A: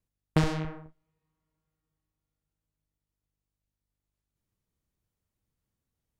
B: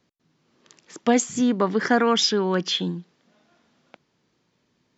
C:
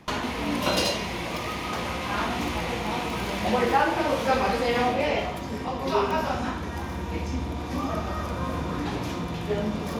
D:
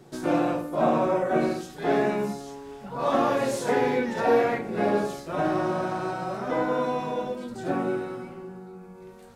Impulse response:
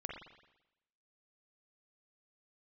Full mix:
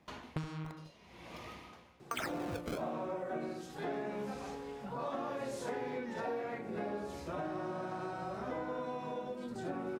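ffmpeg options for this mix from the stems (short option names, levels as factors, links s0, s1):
-filter_complex "[0:a]aecho=1:1:7.2:0.65,volume=0.501[s0];[1:a]highpass=990,acompressor=threshold=0.0501:ratio=6,acrusher=samples=27:mix=1:aa=0.000001:lfo=1:lforange=43.2:lforate=0.84,volume=1.33,asplit=3[s1][s2][s3];[s1]atrim=end=0.72,asetpts=PTS-STARTPTS,afade=t=out:st=0.716:d=0.004:c=hsin[s4];[s2]atrim=start=0.72:end=2.11,asetpts=PTS-STARTPTS,volume=0[s5];[s3]atrim=start=2.11,asetpts=PTS-STARTPTS,afade=t=in:d=0.004:c=hsin[s6];[s4][s5][s6]concat=n=3:v=0:a=1[s7];[2:a]aeval=exprs='val(0)*pow(10,-22*(0.5-0.5*cos(2*PI*0.7*n/s))/20)':c=same,volume=0.15[s8];[3:a]adelay=2000,volume=0.631[s9];[s0][s7][s8][s9]amix=inputs=4:normalize=0,highpass=41,highshelf=f=7800:g=-5,acompressor=threshold=0.0126:ratio=4"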